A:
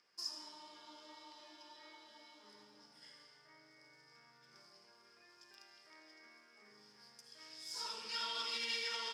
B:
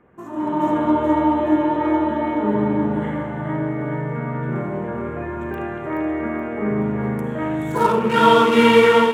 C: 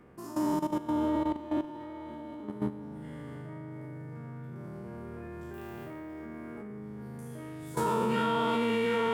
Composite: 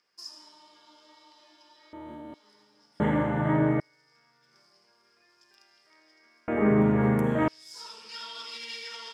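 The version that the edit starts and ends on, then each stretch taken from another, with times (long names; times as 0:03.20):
A
0:01.93–0:02.34: punch in from C
0:03.00–0:03.80: punch in from B
0:06.48–0:07.48: punch in from B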